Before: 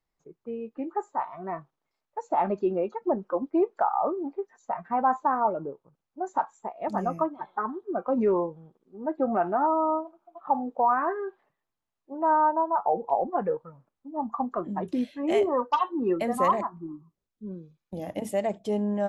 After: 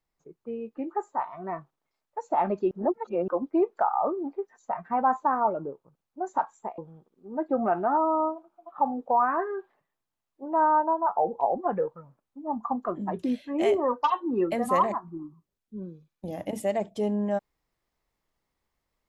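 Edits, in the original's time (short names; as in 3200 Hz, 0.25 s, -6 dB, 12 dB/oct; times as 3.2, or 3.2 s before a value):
2.71–3.28 reverse
6.78–8.47 cut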